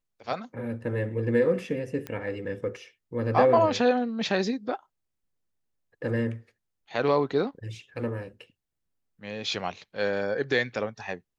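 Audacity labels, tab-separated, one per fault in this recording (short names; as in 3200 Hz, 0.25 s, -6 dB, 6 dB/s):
2.070000	2.070000	pop -20 dBFS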